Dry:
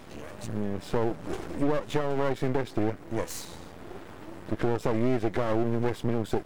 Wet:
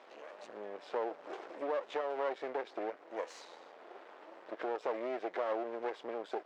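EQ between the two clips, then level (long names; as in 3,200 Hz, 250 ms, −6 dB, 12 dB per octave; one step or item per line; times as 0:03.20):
four-pole ladder high-pass 410 Hz, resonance 25%
high-frequency loss of the air 150 metres
0.0 dB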